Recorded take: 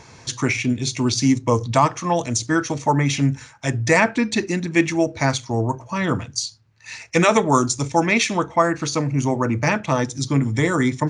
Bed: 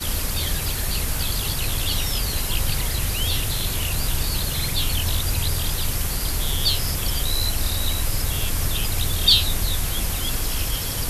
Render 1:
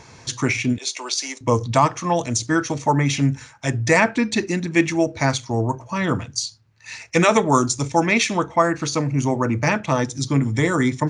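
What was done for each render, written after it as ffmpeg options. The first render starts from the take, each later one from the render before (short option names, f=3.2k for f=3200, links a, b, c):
-filter_complex "[0:a]asettb=1/sr,asplit=3[a][b][c];[a]atrim=end=0.784[d];[b]atrim=start=0.78:end=1.41,asetpts=PTS-STARTPTS,afade=t=in:d=0.004:c=qsin,afade=t=out:st=0.626:d=0.004:c=qsin,highpass=f=500:w=0.5412,highpass=f=500:w=1.3066[e];[c]atrim=start=1.406[f];[d][e]acrossfade=d=0.004:c1=hsin:c2=qsin[g];[g][f]acrossfade=d=0.004:c1=qsin:c2=hsin"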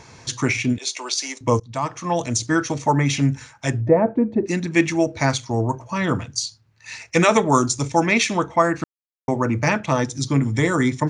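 -filter_complex "[0:a]asettb=1/sr,asplit=3[a][b][c];[a]atrim=end=3.814[d];[b]atrim=start=3.81:end=4.46,asetpts=PTS-STARTPTS,afade=t=in:d=0.004:c=qsin,afade=t=out:st=0.646:d=0.004:c=qsin,lowpass=f=560:t=q:w=1.5[e];[c]atrim=start=4.456[f];[d][e]acrossfade=d=0.004:c1=hsin:c2=qsin[g];[g][f]acrossfade=d=0.004:c1=qsin:c2=hsin,asplit=4[h][i][j][k];[h]atrim=end=1.6,asetpts=PTS-STARTPTS,afade=t=out:st=1.596:d=0.004:c=hsin:silence=0.0794328[l];[i]atrim=start=1.6:end=8.84,asetpts=PTS-STARTPTS,afade=t=in:d=0.66:silence=0.0794328,afade=t=out:st=7.236:d=0.004:c=hsin[m];[j]atrim=start=8.84:end=9.28,asetpts=PTS-STARTPTS,volume=0[n];[k]atrim=start=9.28,asetpts=PTS-STARTPTS,afade=t=in:d=0.004:c=hsin[o];[l][m][n][o]concat=n=4:v=0:a=1"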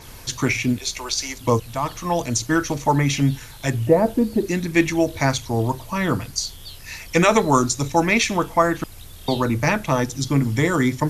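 -filter_complex "[1:a]volume=-18dB[a];[0:a][a]amix=inputs=2:normalize=0"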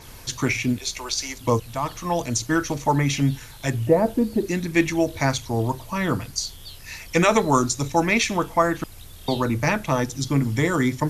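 -af "volume=-2dB"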